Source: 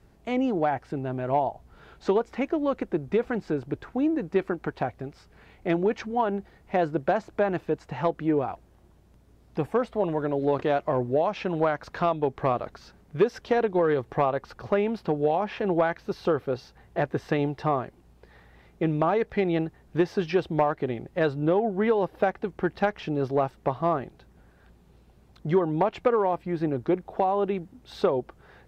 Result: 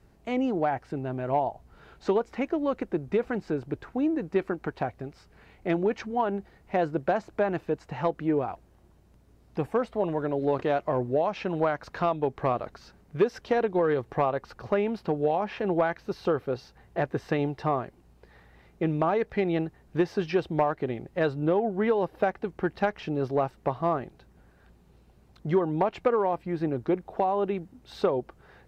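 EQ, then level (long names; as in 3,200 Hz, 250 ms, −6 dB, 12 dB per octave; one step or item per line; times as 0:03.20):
notch filter 3,400 Hz, Q 25
−1.5 dB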